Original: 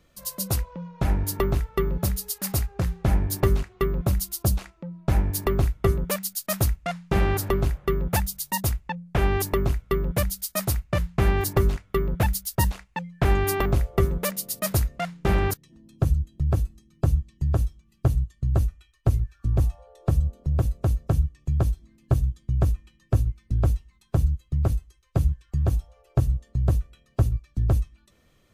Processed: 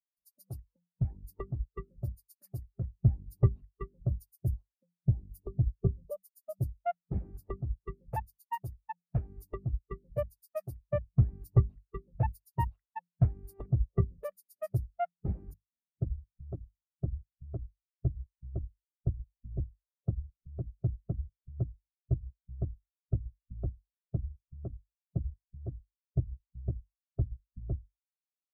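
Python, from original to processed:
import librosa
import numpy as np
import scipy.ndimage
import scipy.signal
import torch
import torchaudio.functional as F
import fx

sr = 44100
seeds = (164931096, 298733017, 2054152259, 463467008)

y = fx.hum_notches(x, sr, base_hz=50, count=4)
y = fx.hpss(y, sr, part='harmonic', gain_db=-16)
y = fx.peak_eq(y, sr, hz=2000.0, db=-14.5, octaves=1.1, at=(4.25, 6.61), fade=0.02)
y = fx.spectral_expand(y, sr, expansion=2.5)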